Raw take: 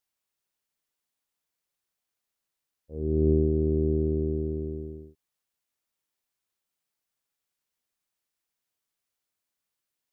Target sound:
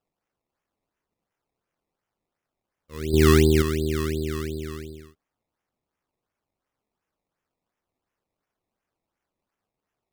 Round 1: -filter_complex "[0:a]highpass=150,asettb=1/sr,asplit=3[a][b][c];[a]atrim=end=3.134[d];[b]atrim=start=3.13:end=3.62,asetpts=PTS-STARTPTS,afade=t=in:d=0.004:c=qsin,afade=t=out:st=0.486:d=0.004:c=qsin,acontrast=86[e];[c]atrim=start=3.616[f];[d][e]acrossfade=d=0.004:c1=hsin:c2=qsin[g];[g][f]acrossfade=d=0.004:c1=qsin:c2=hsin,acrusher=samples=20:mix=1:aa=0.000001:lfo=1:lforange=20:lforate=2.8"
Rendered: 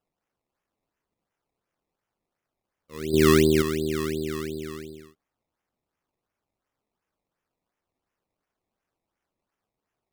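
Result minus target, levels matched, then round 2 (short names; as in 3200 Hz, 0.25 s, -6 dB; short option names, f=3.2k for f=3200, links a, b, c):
125 Hz band -4.5 dB
-filter_complex "[0:a]highpass=55,asettb=1/sr,asplit=3[a][b][c];[a]atrim=end=3.134[d];[b]atrim=start=3.13:end=3.62,asetpts=PTS-STARTPTS,afade=t=in:d=0.004:c=qsin,afade=t=out:st=0.486:d=0.004:c=qsin,acontrast=86[e];[c]atrim=start=3.616[f];[d][e]acrossfade=d=0.004:c1=hsin:c2=qsin[g];[g][f]acrossfade=d=0.004:c1=qsin:c2=hsin,acrusher=samples=20:mix=1:aa=0.000001:lfo=1:lforange=20:lforate=2.8"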